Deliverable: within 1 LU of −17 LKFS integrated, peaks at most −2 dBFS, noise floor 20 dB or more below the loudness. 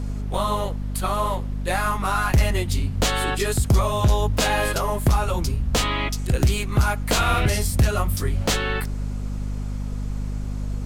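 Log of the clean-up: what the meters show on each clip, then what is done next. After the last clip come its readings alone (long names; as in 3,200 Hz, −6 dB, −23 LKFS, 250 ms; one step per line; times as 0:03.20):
mains hum 50 Hz; hum harmonics up to 250 Hz; level of the hum −24 dBFS; background noise floor −28 dBFS; target noise floor −43 dBFS; integrated loudness −23.0 LKFS; sample peak −8.5 dBFS; target loudness −17.0 LKFS
→ mains-hum notches 50/100/150/200/250 Hz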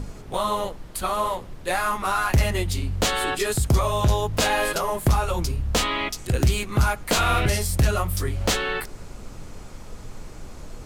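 mains hum none found; background noise floor −40 dBFS; target noise floor −44 dBFS
→ noise reduction from a noise print 6 dB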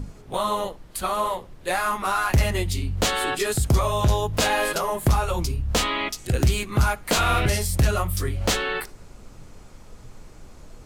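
background noise floor −46 dBFS; integrated loudness −23.5 LKFS; sample peak −9.0 dBFS; target loudness −17.0 LKFS
→ level +6.5 dB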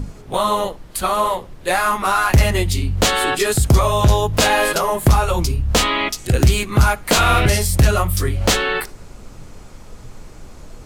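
integrated loudness −17.0 LKFS; sample peak −2.5 dBFS; background noise floor −39 dBFS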